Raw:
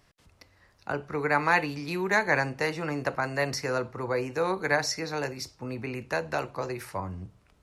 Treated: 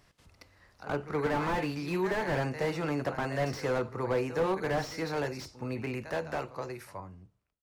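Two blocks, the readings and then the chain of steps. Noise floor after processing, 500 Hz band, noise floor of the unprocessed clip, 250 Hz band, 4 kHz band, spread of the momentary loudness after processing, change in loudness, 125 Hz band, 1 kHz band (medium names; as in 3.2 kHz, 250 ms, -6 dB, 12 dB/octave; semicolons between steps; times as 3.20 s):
-74 dBFS, -1.5 dB, -64 dBFS, -0.5 dB, -6.5 dB, 10 LU, -3.5 dB, 0.0 dB, -5.0 dB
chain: fade out at the end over 1.83 s; pre-echo 72 ms -16 dB; slew-rate limiter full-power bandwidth 36 Hz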